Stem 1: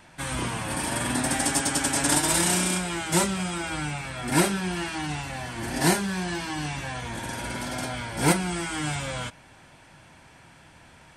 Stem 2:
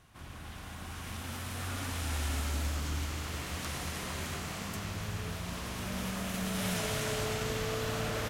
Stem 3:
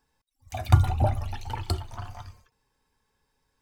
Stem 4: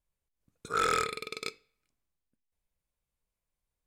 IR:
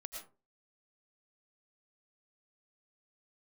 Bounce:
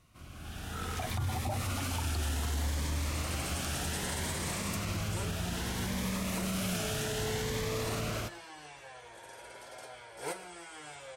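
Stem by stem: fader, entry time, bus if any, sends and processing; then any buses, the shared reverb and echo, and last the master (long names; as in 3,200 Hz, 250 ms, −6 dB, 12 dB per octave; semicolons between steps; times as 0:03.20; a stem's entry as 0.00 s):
−18.0 dB, 2.00 s, send −8 dB, low shelf with overshoot 330 Hz −10 dB, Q 3
−4.0 dB, 0.00 s, send −12 dB, automatic gain control gain up to 8 dB; soft clipping −14.5 dBFS, distortion −28 dB; phaser whose notches keep moving one way rising 0.63 Hz
−2.0 dB, 0.45 s, no send, high-pass filter 98 Hz
−15.5 dB, 0.00 s, no send, no processing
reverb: on, RT60 0.35 s, pre-delay 70 ms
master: brickwall limiter −25.5 dBFS, peak gain reduction 16 dB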